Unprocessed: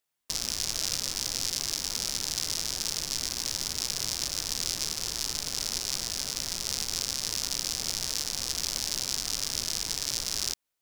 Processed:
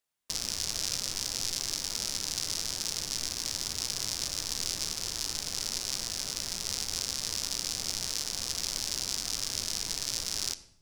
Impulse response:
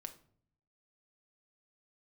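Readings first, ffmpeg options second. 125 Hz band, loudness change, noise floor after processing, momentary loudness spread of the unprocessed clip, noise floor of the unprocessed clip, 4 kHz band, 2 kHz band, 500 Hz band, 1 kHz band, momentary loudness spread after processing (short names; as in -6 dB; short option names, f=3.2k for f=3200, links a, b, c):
-1.5 dB, -2.0 dB, -49 dBFS, 1 LU, -83 dBFS, -2.0 dB, -2.0 dB, -2.0 dB, -2.0 dB, 2 LU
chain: -filter_complex "[0:a]asplit=2[a][b];[1:a]atrim=start_sample=2205,asetrate=23814,aresample=44100[c];[b][c]afir=irnorm=-1:irlink=0,volume=0.5dB[d];[a][d]amix=inputs=2:normalize=0,volume=-7.5dB"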